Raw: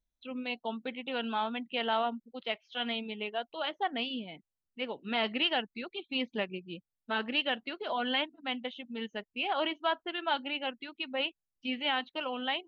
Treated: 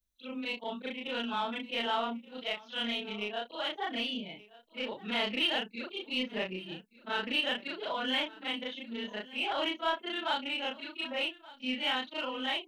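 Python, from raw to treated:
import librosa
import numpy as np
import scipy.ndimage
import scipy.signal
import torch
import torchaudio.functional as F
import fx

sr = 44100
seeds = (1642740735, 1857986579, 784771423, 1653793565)

p1 = fx.frame_reverse(x, sr, frame_ms=86.0)
p2 = fx.high_shelf(p1, sr, hz=4000.0, db=8.0)
p3 = fx.notch(p2, sr, hz=740.0, q=12.0)
p4 = 10.0 ** (-35.5 / 20.0) * np.tanh(p3 / 10.0 ** (-35.5 / 20.0))
p5 = p3 + (p4 * librosa.db_to_amplitude(-7.5))
y = p5 + 10.0 ** (-20.0 / 20.0) * np.pad(p5, (int(1176 * sr / 1000.0), 0))[:len(p5)]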